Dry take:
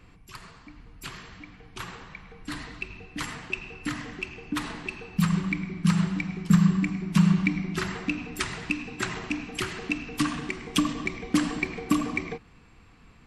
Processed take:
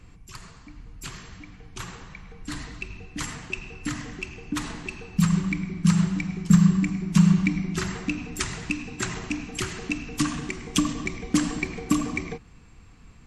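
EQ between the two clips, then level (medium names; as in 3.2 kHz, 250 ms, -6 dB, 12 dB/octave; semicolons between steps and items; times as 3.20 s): bass shelf 190 Hz +8 dB; peaking EQ 6.8 kHz +9.5 dB 0.75 oct; -1.5 dB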